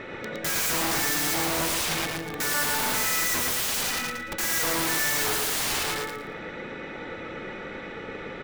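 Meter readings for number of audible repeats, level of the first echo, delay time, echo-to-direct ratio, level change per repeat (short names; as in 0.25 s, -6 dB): 3, -3.5 dB, 0.113 s, -3.0 dB, -12.0 dB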